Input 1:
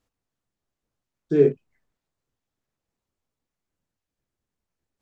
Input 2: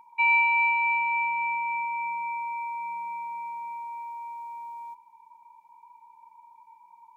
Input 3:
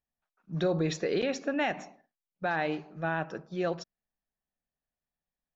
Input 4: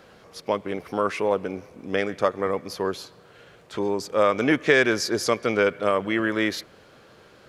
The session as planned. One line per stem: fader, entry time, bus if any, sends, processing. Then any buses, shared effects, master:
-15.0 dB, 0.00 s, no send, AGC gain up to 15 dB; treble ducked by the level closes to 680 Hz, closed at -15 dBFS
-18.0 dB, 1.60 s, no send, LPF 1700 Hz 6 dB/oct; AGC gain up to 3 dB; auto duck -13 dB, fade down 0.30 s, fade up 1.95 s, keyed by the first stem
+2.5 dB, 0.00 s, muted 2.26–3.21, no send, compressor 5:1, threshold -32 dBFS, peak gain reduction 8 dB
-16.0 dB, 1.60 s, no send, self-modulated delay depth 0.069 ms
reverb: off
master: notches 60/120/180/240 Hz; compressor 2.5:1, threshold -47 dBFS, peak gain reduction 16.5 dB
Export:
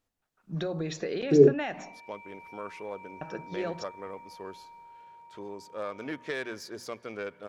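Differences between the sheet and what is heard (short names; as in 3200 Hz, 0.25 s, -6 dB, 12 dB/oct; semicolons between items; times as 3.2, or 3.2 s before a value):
stem 1 -15.0 dB -> -5.0 dB; master: missing compressor 2.5:1, threshold -47 dBFS, peak gain reduction 16.5 dB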